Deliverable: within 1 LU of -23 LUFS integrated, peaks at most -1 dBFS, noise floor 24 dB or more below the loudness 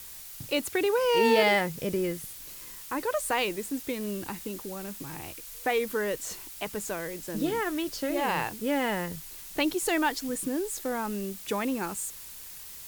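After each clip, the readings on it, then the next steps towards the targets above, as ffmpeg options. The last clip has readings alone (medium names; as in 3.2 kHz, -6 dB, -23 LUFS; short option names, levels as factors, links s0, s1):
noise floor -44 dBFS; noise floor target -54 dBFS; loudness -29.5 LUFS; peak level -9.0 dBFS; loudness target -23.0 LUFS
-> -af "afftdn=nr=10:nf=-44"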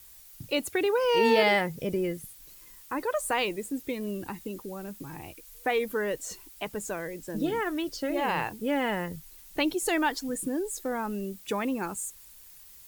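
noise floor -51 dBFS; noise floor target -54 dBFS
-> -af "afftdn=nr=6:nf=-51"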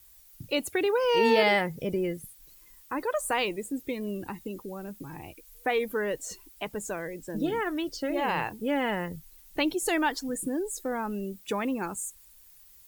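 noise floor -55 dBFS; loudness -29.5 LUFS; peak level -9.0 dBFS; loudness target -23.0 LUFS
-> -af "volume=2.11"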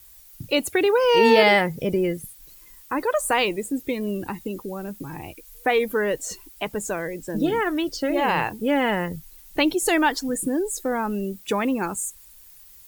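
loudness -23.0 LUFS; peak level -2.5 dBFS; noise floor -49 dBFS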